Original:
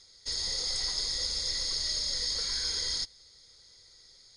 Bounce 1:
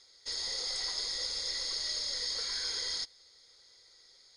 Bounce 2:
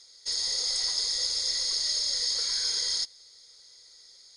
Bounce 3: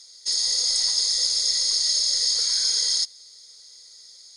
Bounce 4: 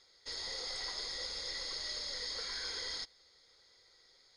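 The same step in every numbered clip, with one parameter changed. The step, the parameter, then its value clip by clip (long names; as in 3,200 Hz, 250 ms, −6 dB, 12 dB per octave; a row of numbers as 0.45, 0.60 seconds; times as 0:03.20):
bass and treble, treble: −5, +5, +14, −14 decibels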